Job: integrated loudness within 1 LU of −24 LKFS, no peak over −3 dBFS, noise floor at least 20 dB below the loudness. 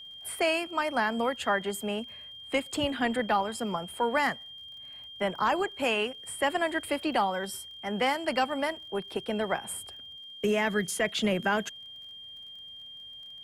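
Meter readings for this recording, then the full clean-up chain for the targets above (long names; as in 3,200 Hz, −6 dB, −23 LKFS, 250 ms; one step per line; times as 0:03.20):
crackle rate 37 per second; interfering tone 3,200 Hz; level of the tone −43 dBFS; integrated loudness −29.5 LKFS; sample peak −14.5 dBFS; target loudness −24.0 LKFS
→ click removal
notch filter 3,200 Hz, Q 30
level +5.5 dB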